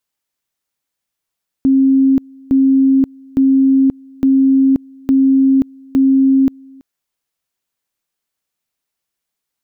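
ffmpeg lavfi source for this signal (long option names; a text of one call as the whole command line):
ffmpeg -f lavfi -i "aevalsrc='pow(10,(-7.5-28.5*gte(mod(t,0.86),0.53))/20)*sin(2*PI*268*t)':duration=5.16:sample_rate=44100" out.wav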